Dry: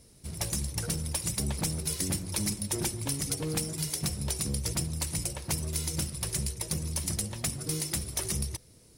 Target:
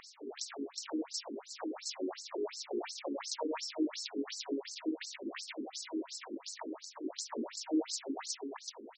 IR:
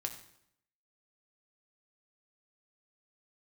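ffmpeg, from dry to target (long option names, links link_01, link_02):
-filter_complex "[0:a]alimiter=level_in=0.5dB:limit=-24dB:level=0:latency=1:release=96,volume=-0.5dB,asplit=2[link_01][link_02];[link_02]asetrate=88200,aresample=44100,atempo=0.5,volume=-1dB[link_03];[link_01][link_03]amix=inputs=2:normalize=0,lowshelf=frequency=160:gain=11.5,areverse,acompressor=threshold=-36dB:ratio=12,areverse,asplit=2[link_04][link_05];[link_05]adelay=22,volume=-10dB[link_06];[link_04][link_06]amix=inputs=2:normalize=0,aecho=1:1:130:0.531,acompressor=mode=upward:threshold=-47dB:ratio=2.5,afftfilt=real='re*between(b*sr/1024,320*pow(5900/320,0.5+0.5*sin(2*PI*2.8*pts/sr))/1.41,320*pow(5900/320,0.5+0.5*sin(2*PI*2.8*pts/sr))*1.41)':imag='im*between(b*sr/1024,320*pow(5900/320,0.5+0.5*sin(2*PI*2.8*pts/sr))/1.41,320*pow(5900/320,0.5+0.5*sin(2*PI*2.8*pts/sr))*1.41)':win_size=1024:overlap=0.75,volume=13dB"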